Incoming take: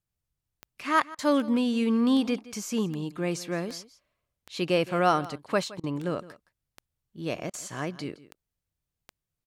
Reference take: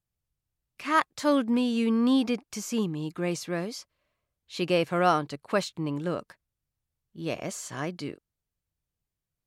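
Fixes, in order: de-click; interpolate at 1.15/5.80/7.50 s, 35 ms; inverse comb 167 ms -18.5 dB

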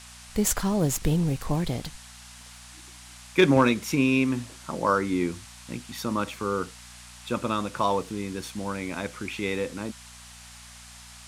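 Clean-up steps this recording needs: clip repair -8.5 dBFS; de-hum 60.1 Hz, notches 4; noise print and reduce 25 dB

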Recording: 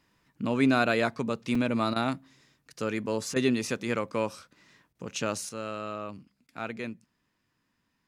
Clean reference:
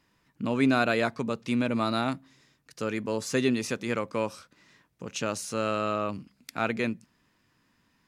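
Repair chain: interpolate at 1.55/2.73 s, 3.6 ms; interpolate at 1.94/3.34/4.93/6.47 s, 19 ms; gain correction +7.5 dB, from 5.49 s

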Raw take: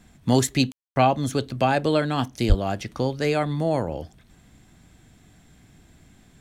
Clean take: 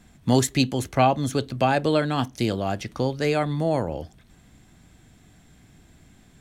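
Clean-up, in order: de-plosive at 2.48 s; room tone fill 0.72–0.96 s

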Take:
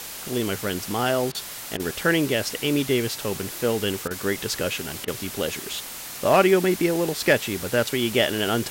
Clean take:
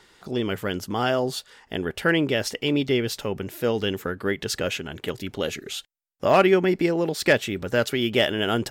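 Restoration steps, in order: interpolate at 1.32/1.77/4.08/5.05 s, 26 ms; noise print and reduce 18 dB

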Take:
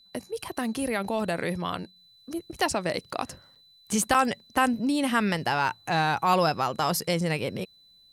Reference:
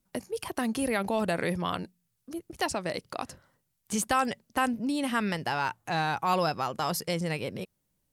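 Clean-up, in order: band-stop 4 kHz, Q 30; interpolate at 3.11/3.55/4.14 s, 6.5 ms; trim 0 dB, from 1.96 s -4 dB

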